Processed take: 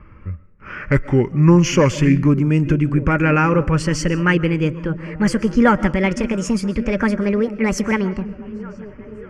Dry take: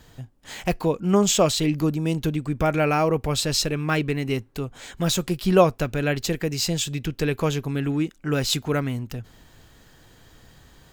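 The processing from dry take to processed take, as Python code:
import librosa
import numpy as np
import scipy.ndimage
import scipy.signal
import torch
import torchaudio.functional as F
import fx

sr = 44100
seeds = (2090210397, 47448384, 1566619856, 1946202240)

p1 = fx.speed_glide(x, sr, from_pct=69, to_pct=166)
p2 = fx.env_lowpass(p1, sr, base_hz=1700.0, full_db=-19.0)
p3 = scipy.signal.sosfilt(scipy.signal.butter(2, 4100.0, 'lowpass', fs=sr, output='sos'), p2)
p4 = fx.peak_eq(p3, sr, hz=600.0, db=14.0, octaves=0.23)
p5 = 10.0 ** (-11.0 / 20.0) * np.tanh(p4 / 10.0 ** (-11.0 / 20.0))
p6 = p4 + (p5 * 10.0 ** (-5.5 / 20.0))
p7 = fx.fixed_phaser(p6, sr, hz=1600.0, stages=4)
p8 = p7 + fx.echo_stepped(p7, sr, ms=595, hz=190.0, octaves=0.7, feedback_pct=70, wet_db=-11.5, dry=0)
p9 = fx.rev_freeverb(p8, sr, rt60_s=0.43, hf_ratio=0.7, predelay_ms=95, drr_db=17.5)
y = p9 * 10.0 ** (6.0 / 20.0)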